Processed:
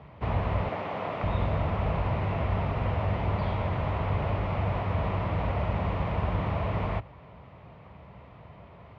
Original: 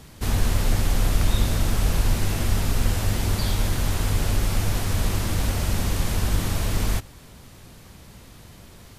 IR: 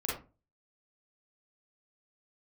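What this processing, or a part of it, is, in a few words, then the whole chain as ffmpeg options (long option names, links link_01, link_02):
bass cabinet: -filter_complex "[0:a]highpass=frequency=64:width=0.5412,highpass=frequency=64:width=1.3066,equalizer=frequency=92:width_type=q:width=4:gain=-4,equalizer=frequency=240:width_type=q:width=4:gain=-8,equalizer=frequency=340:width_type=q:width=4:gain=-6,equalizer=frequency=640:width_type=q:width=4:gain=6,equalizer=frequency=1000:width_type=q:width=4:gain=5,equalizer=frequency=1600:width_type=q:width=4:gain=-9,lowpass=frequency=2300:width=0.5412,lowpass=frequency=2300:width=1.3066,asettb=1/sr,asplit=3[link_01][link_02][link_03];[link_01]atrim=end=0.694[link_04];[link_02]atrim=start=0.69:end=1.24,asetpts=PTS-STARTPTS,afade=type=in:duration=0.004:curve=qsin,afade=type=out:start_time=0.546:duration=0.004:curve=qsin,highpass=250[link_05];[link_03]atrim=start=1.236[link_06];[link_04][link_05]acrossfade=duration=0.004:curve1=hsin:curve2=qsin[link_07];[link_07][link_06]acrossfade=duration=0.004:curve1=qsin:curve2=hsin"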